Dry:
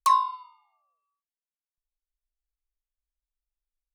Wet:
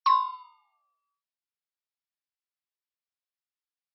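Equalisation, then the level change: HPF 850 Hz 12 dB/oct; brick-wall FIR low-pass 5600 Hz; 0.0 dB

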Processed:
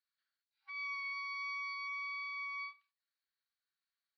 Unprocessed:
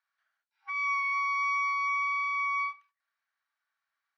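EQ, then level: band-pass 4400 Hz, Q 7.4; air absorption 300 m; +14.5 dB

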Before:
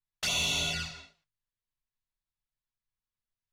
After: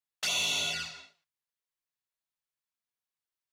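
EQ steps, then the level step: HPF 410 Hz 6 dB/oct; 0.0 dB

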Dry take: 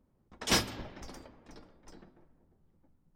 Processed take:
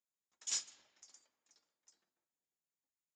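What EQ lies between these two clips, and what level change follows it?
band-pass 7000 Hz, Q 12; air absorption 100 m; +13.5 dB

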